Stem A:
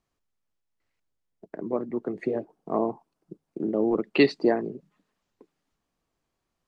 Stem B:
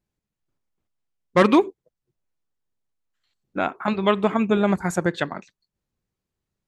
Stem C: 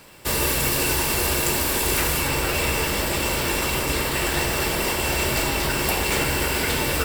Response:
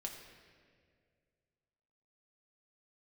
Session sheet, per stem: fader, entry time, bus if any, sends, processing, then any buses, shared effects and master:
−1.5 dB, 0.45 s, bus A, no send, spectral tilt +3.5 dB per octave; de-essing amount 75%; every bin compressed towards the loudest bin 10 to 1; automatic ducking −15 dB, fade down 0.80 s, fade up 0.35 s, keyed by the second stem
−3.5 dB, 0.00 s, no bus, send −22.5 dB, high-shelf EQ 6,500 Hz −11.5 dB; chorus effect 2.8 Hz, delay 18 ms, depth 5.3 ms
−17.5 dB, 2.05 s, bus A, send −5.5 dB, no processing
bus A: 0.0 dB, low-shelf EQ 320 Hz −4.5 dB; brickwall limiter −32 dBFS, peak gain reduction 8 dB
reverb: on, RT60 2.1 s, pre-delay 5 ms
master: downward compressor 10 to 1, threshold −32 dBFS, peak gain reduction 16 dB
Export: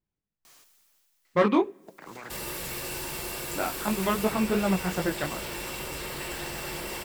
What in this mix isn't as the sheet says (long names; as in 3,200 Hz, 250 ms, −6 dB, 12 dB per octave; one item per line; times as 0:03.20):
stem A −1.5 dB → +7.0 dB
stem C −17.5 dB → −9.5 dB
master: missing downward compressor 10 to 1, threshold −32 dBFS, peak gain reduction 16 dB